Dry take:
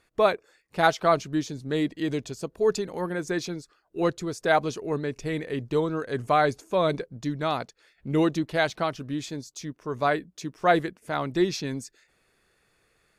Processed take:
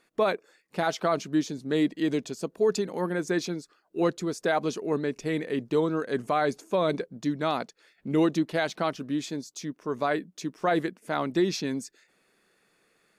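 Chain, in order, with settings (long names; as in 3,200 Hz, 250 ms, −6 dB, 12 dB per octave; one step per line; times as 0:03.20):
low shelf with overshoot 130 Hz −13.5 dB, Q 1.5
brickwall limiter −15 dBFS, peak gain reduction 10 dB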